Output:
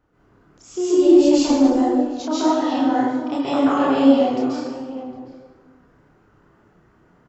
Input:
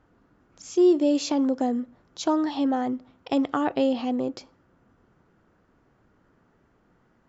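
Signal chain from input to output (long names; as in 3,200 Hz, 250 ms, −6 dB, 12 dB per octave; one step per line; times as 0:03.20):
slap from a distant wall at 130 metres, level −14 dB
tape wow and flutter 42 cents
0:00.95–0:01.61: background noise brown −50 dBFS
dense smooth reverb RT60 1.3 s, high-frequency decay 0.7×, pre-delay 120 ms, DRR −10 dB
multi-voice chorus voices 2, 1.5 Hz, delay 30 ms, depth 3 ms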